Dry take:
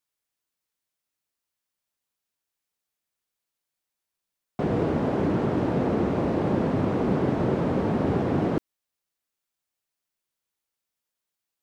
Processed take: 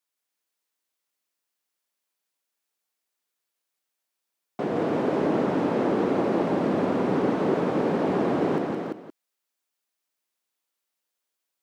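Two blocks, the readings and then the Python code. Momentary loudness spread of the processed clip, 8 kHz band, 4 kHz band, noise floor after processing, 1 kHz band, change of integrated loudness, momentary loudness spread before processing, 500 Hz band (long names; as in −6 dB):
6 LU, can't be measured, +2.5 dB, −83 dBFS, +2.5 dB, +0.5 dB, 3 LU, +2.0 dB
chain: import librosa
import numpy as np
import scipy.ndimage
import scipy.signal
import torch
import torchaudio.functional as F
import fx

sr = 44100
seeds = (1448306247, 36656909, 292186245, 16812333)

p1 = scipy.signal.sosfilt(scipy.signal.butter(2, 240.0, 'highpass', fs=sr, output='sos'), x)
y = p1 + fx.echo_multitap(p1, sr, ms=(166, 284, 343, 520), db=(-4.5, -11.0, -5.0, -16.5), dry=0)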